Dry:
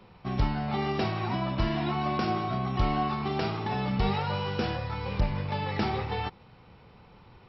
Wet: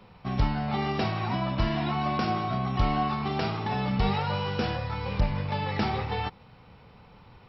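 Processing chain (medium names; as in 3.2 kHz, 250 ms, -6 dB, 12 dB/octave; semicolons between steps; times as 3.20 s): peaking EQ 360 Hz -6 dB 0.25 oct; trim +1.5 dB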